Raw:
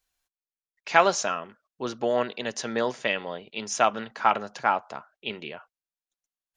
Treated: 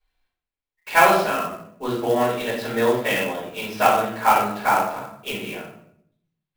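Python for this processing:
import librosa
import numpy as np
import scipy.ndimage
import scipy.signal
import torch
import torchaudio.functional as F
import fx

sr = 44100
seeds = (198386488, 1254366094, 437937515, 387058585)

y = scipy.signal.sosfilt(scipy.signal.butter(6, 4400.0, 'lowpass', fs=sr, output='sos'), x)
y = fx.room_shoebox(y, sr, seeds[0], volume_m3=120.0, walls='mixed', distance_m=4.5)
y = fx.clock_jitter(y, sr, seeds[1], jitter_ms=0.021)
y = y * librosa.db_to_amplitude(-8.5)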